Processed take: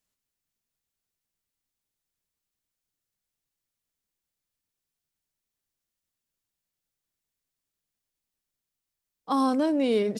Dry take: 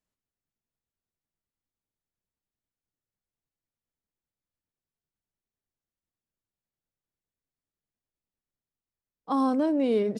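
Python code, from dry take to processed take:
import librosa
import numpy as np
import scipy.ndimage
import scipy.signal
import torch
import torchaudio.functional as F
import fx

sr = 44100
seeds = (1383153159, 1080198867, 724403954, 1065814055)

y = fx.high_shelf(x, sr, hz=2000.0, db=9.5)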